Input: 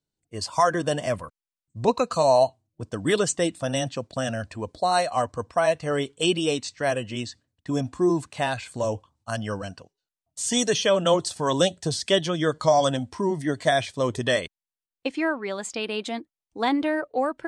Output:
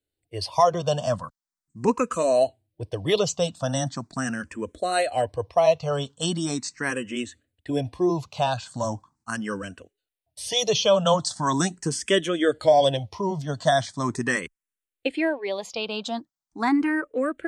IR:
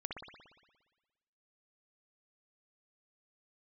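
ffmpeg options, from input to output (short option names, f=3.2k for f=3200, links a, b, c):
-filter_complex "[0:a]asplit=2[a][b];[b]afreqshift=0.4[c];[a][c]amix=inputs=2:normalize=1,volume=3.5dB"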